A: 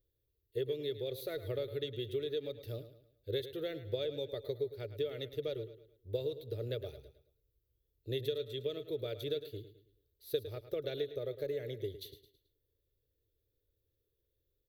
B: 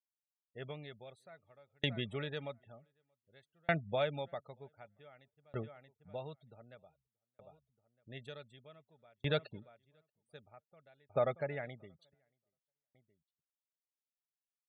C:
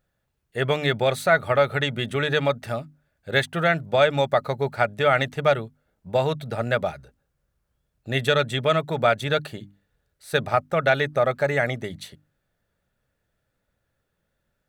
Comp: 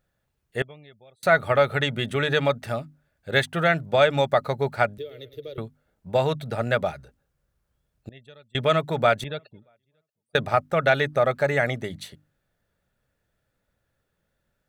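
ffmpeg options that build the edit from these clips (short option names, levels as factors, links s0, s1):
-filter_complex "[1:a]asplit=3[s0][s1][s2];[2:a]asplit=5[s3][s4][s5][s6][s7];[s3]atrim=end=0.622[s8];[s0]atrim=start=0.618:end=1.232[s9];[s4]atrim=start=1.228:end=4.982[s10];[0:a]atrim=start=4.978:end=5.582[s11];[s5]atrim=start=5.578:end=8.092[s12];[s1]atrim=start=8.088:end=8.552[s13];[s6]atrim=start=8.548:end=9.242[s14];[s2]atrim=start=9.238:end=10.352[s15];[s7]atrim=start=10.348[s16];[s8][s9]acrossfade=d=0.004:c1=hsin:c2=hsin[s17];[s17][s10]acrossfade=d=0.004:c1=hsin:c2=hsin[s18];[s18][s11]acrossfade=d=0.004:c1=hsin:c2=hsin[s19];[s19][s12]acrossfade=d=0.004:c1=hsin:c2=hsin[s20];[s20][s13]acrossfade=d=0.004:c1=hsin:c2=hsin[s21];[s21][s14]acrossfade=d=0.004:c1=hsin:c2=hsin[s22];[s22][s15]acrossfade=d=0.004:c1=hsin:c2=hsin[s23];[s23][s16]acrossfade=d=0.004:c1=hsin:c2=hsin"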